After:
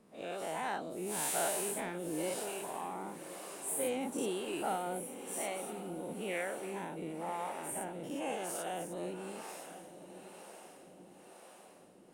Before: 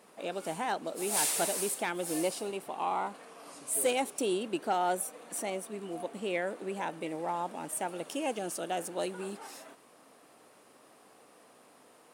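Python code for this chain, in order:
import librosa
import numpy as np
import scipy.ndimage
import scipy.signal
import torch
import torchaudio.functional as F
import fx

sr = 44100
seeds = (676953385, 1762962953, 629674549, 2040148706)

y = fx.spec_dilate(x, sr, span_ms=120)
y = fx.low_shelf(y, sr, hz=150.0, db=11.5)
y = fx.echo_diffused(y, sr, ms=1093, feedback_pct=52, wet_db=-11.5)
y = fx.dynamic_eq(y, sr, hz=5000.0, q=2.0, threshold_db=-50.0, ratio=4.0, max_db=-6)
y = fx.harmonic_tremolo(y, sr, hz=1.0, depth_pct=70, crossover_hz=420.0)
y = y * librosa.db_to_amplitude(-7.0)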